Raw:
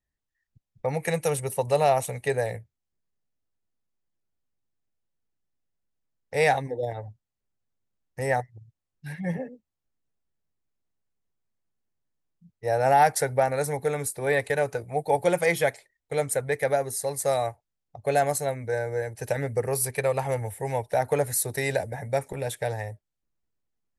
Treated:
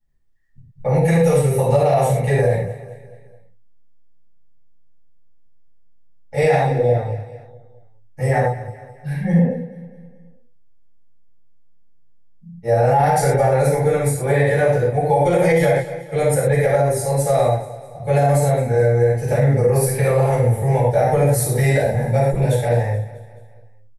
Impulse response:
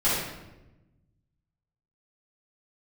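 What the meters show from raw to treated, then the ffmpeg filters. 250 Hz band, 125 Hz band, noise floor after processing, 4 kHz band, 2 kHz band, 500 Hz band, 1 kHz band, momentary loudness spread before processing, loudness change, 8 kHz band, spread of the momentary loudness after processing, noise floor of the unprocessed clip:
+13.5 dB, +16.0 dB, -44 dBFS, +2.5 dB, +4.0 dB, +9.0 dB, +5.5 dB, 11 LU, +9.0 dB, +3.0 dB, 12 LU, -85 dBFS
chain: -filter_complex "[0:a]lowshelf=f=410:g=9,aecho=1:1:214|428|642|856:0.133|0.0667|0.0333|0.0167[s0];[1:a]atrim=start_sample=2205,atrim=end_sample=6174[s1];[s0][s1]afir=irnorm=-1:irlink=0,alimiter=level_in=0.841:limit=0.891:release=50:level=0:latency=1,volume=0.501"

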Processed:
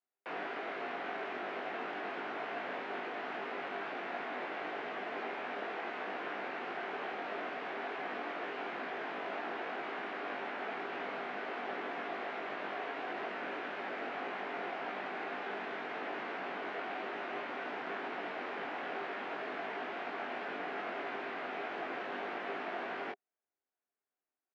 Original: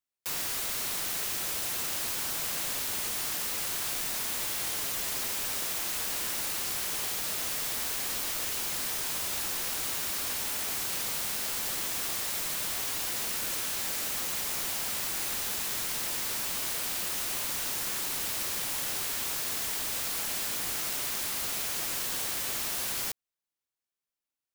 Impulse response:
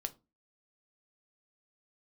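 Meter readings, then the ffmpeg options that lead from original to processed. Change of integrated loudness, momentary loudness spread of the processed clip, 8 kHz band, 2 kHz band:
-10.0 dB, 1 LU, under -40 dB, -1.0 dB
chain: -filter_complex "[0:a]highpass=f=210:w=0.5412,highpass=f=210:w=1.3066,equalizer=f=270:t=q:w=4:g=4,equalizer=f=400:t=q:w=4:g=8,equalizer=f=710:t=q:w=4:g=10,equalizer=f=1500:t=q:w=4:g=3,lowpass=f=2300:w=0.5412,lowpass=f=2300:w=1.3066,asplit=2[s0][s1];[s1]adelay=20,volume=0.668[s2];[s0][s2]amix=inputs=2:normalize=0,volume=0.75"

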